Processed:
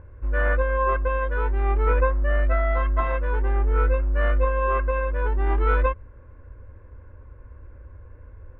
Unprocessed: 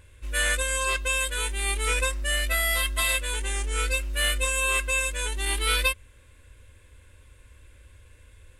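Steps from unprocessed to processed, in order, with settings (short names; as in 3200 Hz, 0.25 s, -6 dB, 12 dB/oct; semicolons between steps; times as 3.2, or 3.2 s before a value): LPF 1300 Hz 24 dB/oct; gain +8.5 dB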